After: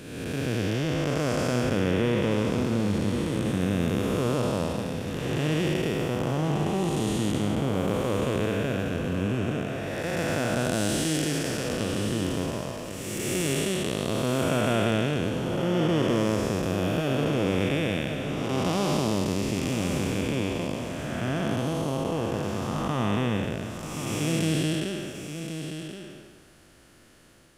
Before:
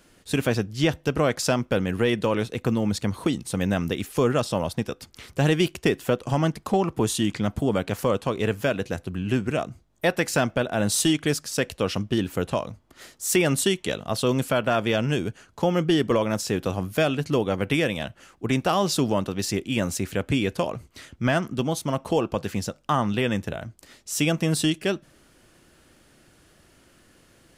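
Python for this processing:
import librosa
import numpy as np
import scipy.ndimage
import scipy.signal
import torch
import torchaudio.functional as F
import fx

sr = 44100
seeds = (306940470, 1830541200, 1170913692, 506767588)

y = fx.spec_blur(x, sr, span_ms=524.0)
y = y + 10.0 ** (-9.0 / 20.0) * np.pad(y, (int(1076 * sr / 1000.0), 0))[:len(y)]
y = F.gain(torch.from_numpy(y), 2.5).numpy()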